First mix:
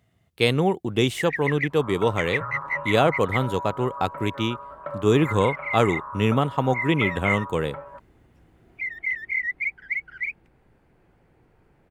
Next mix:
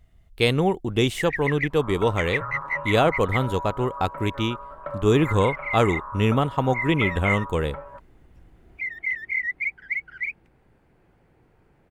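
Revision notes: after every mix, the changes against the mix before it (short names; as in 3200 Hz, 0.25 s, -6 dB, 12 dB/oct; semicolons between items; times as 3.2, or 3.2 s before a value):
speech: remove HPF 100 Hz 24 dB/oct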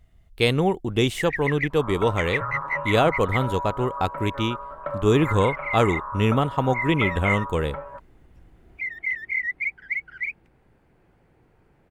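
second sound +3.0 dB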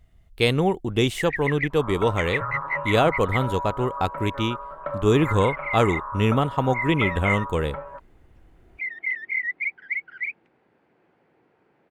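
first sound: add BPF 240–4300 Hz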